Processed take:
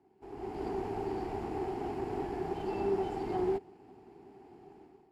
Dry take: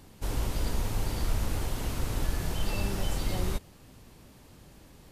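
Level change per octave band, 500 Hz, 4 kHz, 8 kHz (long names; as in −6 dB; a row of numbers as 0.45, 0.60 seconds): +6.5 dB, −16.5 dB, below −20 dB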